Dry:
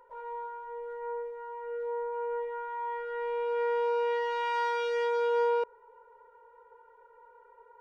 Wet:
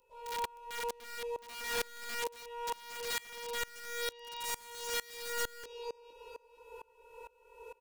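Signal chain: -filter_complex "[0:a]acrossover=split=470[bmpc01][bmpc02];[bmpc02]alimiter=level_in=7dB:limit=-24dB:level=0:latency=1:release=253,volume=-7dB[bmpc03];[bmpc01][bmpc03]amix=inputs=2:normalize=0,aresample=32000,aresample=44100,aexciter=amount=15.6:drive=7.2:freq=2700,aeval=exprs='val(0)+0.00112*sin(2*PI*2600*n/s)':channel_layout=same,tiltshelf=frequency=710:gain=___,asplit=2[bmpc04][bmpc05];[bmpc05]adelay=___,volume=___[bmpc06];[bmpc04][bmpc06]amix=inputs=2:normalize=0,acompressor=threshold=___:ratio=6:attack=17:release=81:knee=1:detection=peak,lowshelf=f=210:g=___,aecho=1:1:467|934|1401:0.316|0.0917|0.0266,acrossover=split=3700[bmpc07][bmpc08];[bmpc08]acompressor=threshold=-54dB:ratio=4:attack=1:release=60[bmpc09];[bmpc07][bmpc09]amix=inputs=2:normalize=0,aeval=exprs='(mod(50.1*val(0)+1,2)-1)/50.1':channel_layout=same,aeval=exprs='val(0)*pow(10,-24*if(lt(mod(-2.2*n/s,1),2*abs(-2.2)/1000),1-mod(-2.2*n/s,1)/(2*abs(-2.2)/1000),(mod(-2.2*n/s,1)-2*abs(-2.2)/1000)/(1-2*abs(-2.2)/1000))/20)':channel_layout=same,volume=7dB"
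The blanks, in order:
8.5, 20, -6.5dB, -38dB, 3.5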